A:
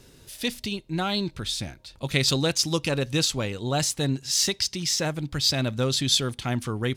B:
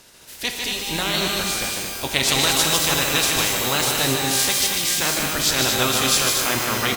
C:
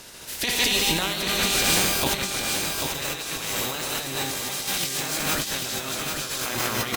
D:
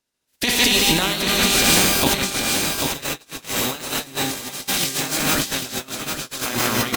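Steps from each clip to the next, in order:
ceiling on every frequency bin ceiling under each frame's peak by 20 dB; loudspeakers that aren't time-aligned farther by 52 metres −5 dB, 79 metres −6 dB; reverb with rising layers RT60 1.8 s, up +12 semitones, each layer −2 dB, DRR 4.5 dB; level +1.5 dB
compressor whose output falls as the input rises −26 dBFS, ratio −0.5; on a send: single-tap delay 790 ms −5.5 dB
noise gate −28 dBFS, range −41 dB; parametric band 250 Hz +5.5 dB 0.54 octaves; level +5 dB

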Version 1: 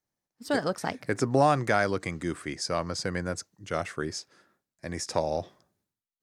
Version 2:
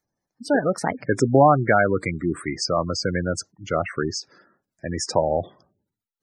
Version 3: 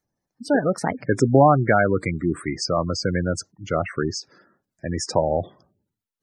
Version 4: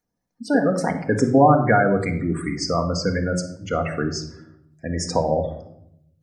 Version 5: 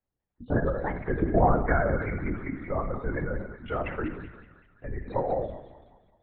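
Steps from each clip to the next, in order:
gate on every frequency bin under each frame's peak −15 dB strong; level +7.5 dB
low-shelf EQ 330 Hz +4 dB; level −1 dB
rectangular room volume 1,900 cubic metres, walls furnished, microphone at 1.8 metres; level −1 dB
delay with a high-pass on its return 192 ms, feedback 50%, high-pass 1,500 Hz, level −6 dB; linear-prediction vocoder at 8 kHz whisper; level −7 dB

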